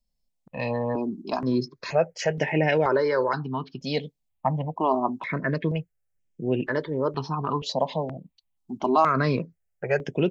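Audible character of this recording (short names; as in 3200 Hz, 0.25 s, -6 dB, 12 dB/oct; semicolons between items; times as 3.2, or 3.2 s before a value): notches that jump at a steady rate 2.1 Hz 360–4200 Hz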